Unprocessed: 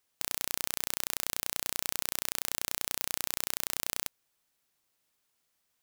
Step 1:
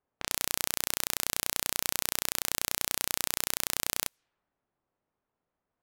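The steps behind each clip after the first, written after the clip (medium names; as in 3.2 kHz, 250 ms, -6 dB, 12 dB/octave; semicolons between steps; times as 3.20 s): level-controlled noise filter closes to 870 Hz, open at -46.5 dBFS; trim +4 dB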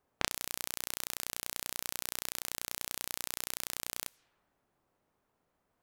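compressor with a negative ratio -37 dBFS, ratio -0.5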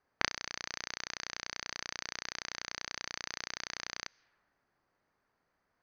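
rippled Chebyshev low-pass 6.4 kHz, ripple 9 dB; trim +5.5 dB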